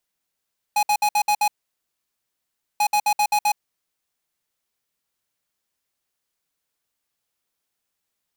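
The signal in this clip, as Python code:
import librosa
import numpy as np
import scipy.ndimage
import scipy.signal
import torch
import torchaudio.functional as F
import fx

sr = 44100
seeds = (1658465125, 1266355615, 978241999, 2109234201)

y = fx.beep_pattern(sr, wave='square', hz=835.0, on_s=0.07, off_s=0.06, beeps=6, pause_s=1.32, groups=2, level_db=-18.5)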